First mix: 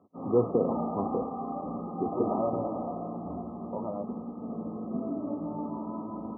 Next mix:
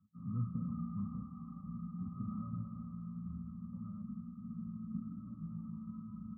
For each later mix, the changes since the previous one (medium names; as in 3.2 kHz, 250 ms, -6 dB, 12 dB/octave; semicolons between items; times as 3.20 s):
master: add inverse Chebyshev band-stop 310–970 Hz, stop band 40 dB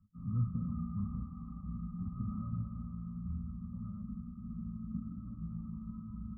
master: remove high-pass 140 Hz 12 dB/octave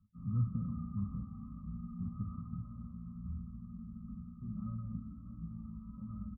first voice: send +7.0 dB; second voice: entry +2.25 s; background: send off